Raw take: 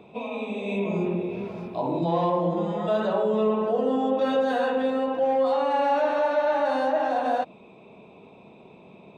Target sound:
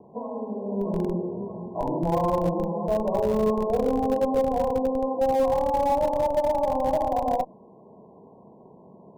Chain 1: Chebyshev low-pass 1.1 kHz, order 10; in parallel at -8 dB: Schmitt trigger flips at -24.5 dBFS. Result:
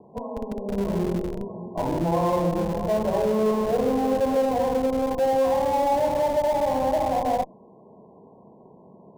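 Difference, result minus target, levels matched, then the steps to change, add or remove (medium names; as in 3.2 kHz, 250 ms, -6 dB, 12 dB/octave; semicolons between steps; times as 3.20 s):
Schmitt trigger: distortion -13 dB
change: Schmitt trigger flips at -18.5 dBFS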